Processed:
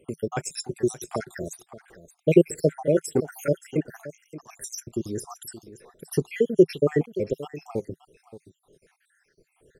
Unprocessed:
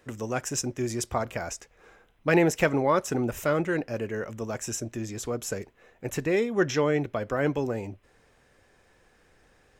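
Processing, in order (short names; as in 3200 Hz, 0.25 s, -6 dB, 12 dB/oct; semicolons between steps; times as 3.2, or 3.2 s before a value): random spectral dropouts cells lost 73%; fifteen-band EQ 160 Hz +9 dB, 400 Hz +11 dB, 10000 Hz +12 dB; on a send: echo 0.575 s -15.5 dB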